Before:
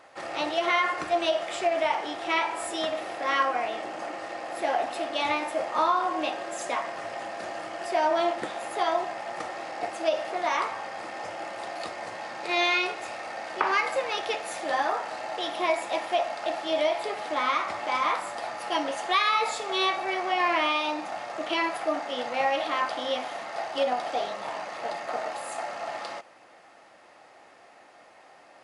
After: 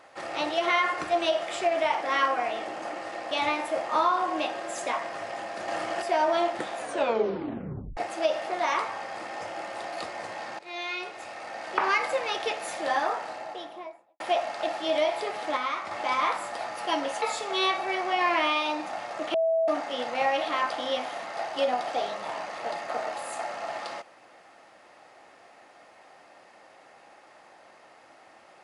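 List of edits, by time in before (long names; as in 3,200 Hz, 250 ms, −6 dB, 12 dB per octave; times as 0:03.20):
0:02.02–0:03.19: remove
0:04.48–0:05.14: remove
0:07.51–0:07.85: clip gain +5 dB
0:08.59: tape stop 1.21 s
0:12.42–0:13.64: fade in, from −17.5 dB
0:14.85–0:16.03: fade out and dull
0:17.40–0:17.74: clip gain −4.5 dB
0:19.05–0:19.41: remove
0:21.53–0:21.87: beep over 653 Hz −21 dBFS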